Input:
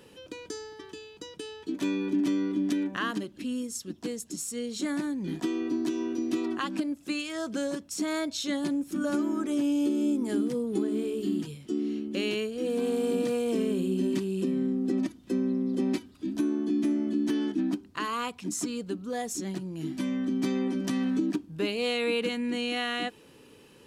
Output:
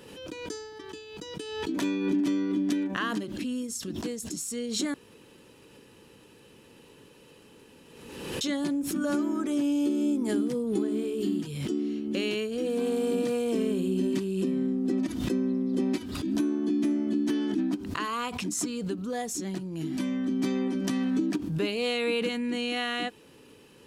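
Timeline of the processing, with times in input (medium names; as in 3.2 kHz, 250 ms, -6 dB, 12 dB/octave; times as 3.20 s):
4.94–8.41 s: room tone
whole clip: swell ahead of each attack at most 42 dB/s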